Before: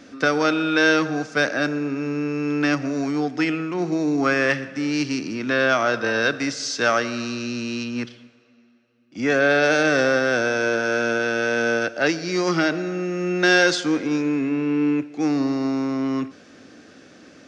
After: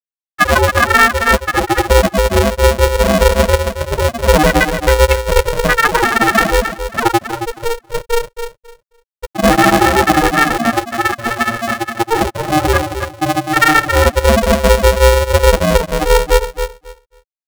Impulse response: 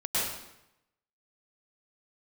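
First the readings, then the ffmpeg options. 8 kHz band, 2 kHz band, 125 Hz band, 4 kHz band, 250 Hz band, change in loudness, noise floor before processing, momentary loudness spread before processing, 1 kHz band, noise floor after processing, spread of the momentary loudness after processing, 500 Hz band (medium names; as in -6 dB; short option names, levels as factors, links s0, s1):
+11.5 dB, +6.0 dB, +14.5 dB, +8.5 dB, +2.5 dB, +8.5 dB, -50 dBFS, 9 LU, +14.0 dB, under -85 dBFS, 9 LU, +9.0 dB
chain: -filter_complex "[0:a]acompressor=threshold=0.0794:ratio=6[s0];[1:a]atrim=start_sample=2205,afade=t=out:st=0.3:d=0.01,atrim=end_sample=13671[s1];[s0][s1]afir=irnorm=-1:irlink=0,acrossover=split=3600[s2][s3];[s3]acompressor=threshold=0.0158:ratio=4:attack=1:release=60[s4];[s2][s4]amix=inputs=2:normalize=0,flanger=delay=1.9:depth=8.5:regen=1:speed=0.96:shape=sinusoidal,bandreject=f=60:t=h:w=6,bandreject=f=120:t=h:w=6,bandreject=f=180:t=h:w=6,afftfilt=real='re*gte(hypot(re,im),0.562)':imag='im*gte(hypot(re,im),0.562)':win_size=1024:overlap=0.75,highshelf=f=2000:g=11.5,aecho=1:1:7:0.82,asplit=2[s5][s6];[s6]adelay=271,lowpass=f=4900:p=1,volume=0.355,asplit=2[s7][s8];[s8]adelay=271,lowpass=f=4900:p=1,volume=0.18,asplit=2[s9][s10];[s10]adelay=271,lowpass=f=4900:p=1,volume=0.18[s11];[s5][s7][s9][s11]amix=inputs=4:normalize=0,alimiter=level_in=2.82:limit=0.891:release=50:level=0:latency=1,aeval=exprs='val(0)*sgn(sin(2*PI*230*n/s))':c=same,volume=0.891"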